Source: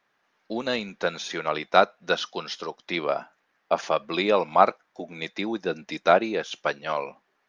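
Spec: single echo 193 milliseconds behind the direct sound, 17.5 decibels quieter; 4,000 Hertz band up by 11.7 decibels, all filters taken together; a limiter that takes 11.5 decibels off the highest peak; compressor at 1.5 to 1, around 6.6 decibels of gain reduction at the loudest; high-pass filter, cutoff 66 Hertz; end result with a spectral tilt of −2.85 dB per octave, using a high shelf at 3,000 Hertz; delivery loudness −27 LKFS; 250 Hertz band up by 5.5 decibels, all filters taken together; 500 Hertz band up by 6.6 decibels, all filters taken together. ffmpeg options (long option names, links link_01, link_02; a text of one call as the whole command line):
ffmpeg -i in.wav -af "highpass=66,equalizer=frequency=250:width_type=o:gain=4.5,equalizer=frequency=500:width_type=o:gain=7,highshelf=frequency=3000:gain=7.5,equalizer=frequency=4000:width_type=o:gain=8,acompressor=threshold=-26dB:ratio=1.5,alimiter=limit=-16dB:level=0:latency=1,aecho=1:1:193:0.133,volume=1.5dB" out.wav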